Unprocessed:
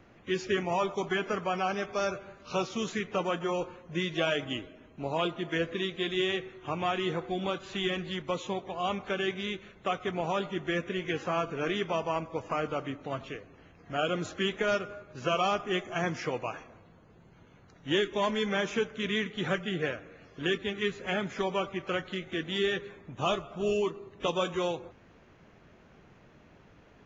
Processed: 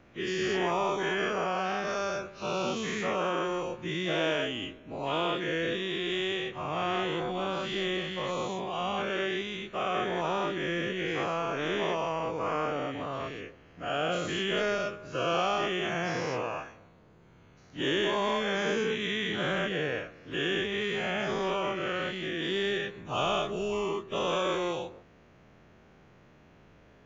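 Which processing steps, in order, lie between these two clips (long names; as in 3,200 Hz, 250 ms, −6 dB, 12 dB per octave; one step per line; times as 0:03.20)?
every bin's largest magnitude spread in time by 240 ms
level −6 dB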